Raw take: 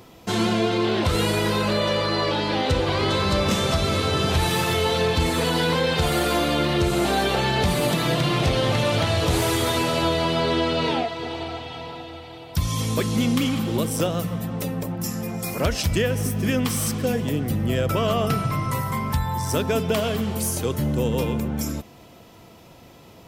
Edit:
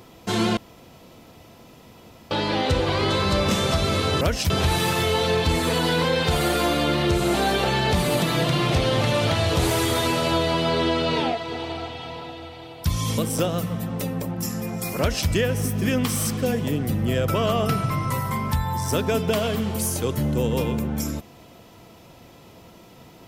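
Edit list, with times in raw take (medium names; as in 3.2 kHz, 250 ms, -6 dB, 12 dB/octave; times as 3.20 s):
0.57–2.31 s: room tone
12.89–13.79 s: delete
15.60–15.89 s: copy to 4.21 s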